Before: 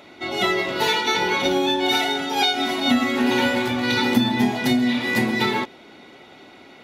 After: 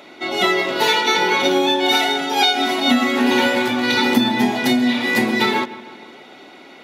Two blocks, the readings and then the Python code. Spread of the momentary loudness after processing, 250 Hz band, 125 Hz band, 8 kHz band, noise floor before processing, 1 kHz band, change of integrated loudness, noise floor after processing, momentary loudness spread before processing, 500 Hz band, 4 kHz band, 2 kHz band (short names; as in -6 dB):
3 LU, +2.5 dB, -3.0 dB, +4.0 dB, -47 dBFS, +4.5 dB, +3.5 dB, -42 dBFS, 3 LU, +4.0 dB, +4.0 dB, +4.0 dB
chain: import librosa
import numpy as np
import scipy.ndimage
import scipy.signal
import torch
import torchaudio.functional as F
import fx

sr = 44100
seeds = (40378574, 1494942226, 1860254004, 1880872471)

y = scipy.signal.sosfilt(scipy.signal.butter(2, 200.0, 'highpass', fs=sr, output='sos'), x)
y = fx.echo_wet_lowpass(y, sr, ms=153, feedback_pct=55, hz=2800.0, wet_db=-16.5)
y = y * 10.0 ** (4.0 / 20.0)